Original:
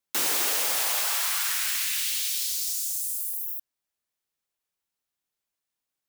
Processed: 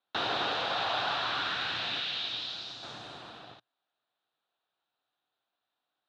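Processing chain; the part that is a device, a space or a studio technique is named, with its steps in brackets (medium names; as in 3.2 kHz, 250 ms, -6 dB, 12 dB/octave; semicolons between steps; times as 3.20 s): 1.99–2.83 s: treble shelf 5.1 kHz -6 dB; overdrive pedal into a guitar cabinet (overdrive pedal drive 18 dB, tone 1.8 kHz, clips at -12.5 dBFS; cabinet simulation 100–3800 Hz, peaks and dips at 120 Hz +9 dB, 300 Hz +4 dB, 720 Hz +8 dB, 1.4 kHz +4 dB, 2.1 kHz -9 dB, 3.8 kHz +10 dB); trim -3.5 dB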